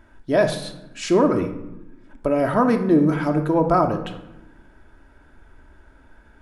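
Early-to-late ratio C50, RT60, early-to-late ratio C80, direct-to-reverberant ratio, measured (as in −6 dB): 9.5 dB, 0.95 s, 12.5 dB, 4.0 dB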